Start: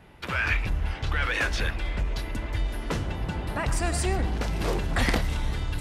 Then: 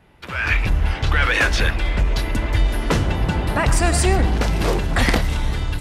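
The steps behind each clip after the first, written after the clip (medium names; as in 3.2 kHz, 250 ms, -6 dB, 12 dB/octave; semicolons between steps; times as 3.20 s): level rider gain up to 13 dB; trim -2 dB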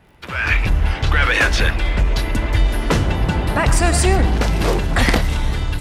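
crackle 42 per s -44 dBFS; trim +2 dB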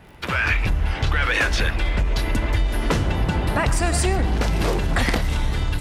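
compression 3:1, threshold -25 dBFS, peak gain reduction 11.5 dB; trim +5 dB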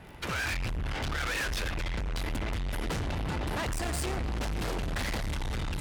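valve stage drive 30 dB, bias 0.5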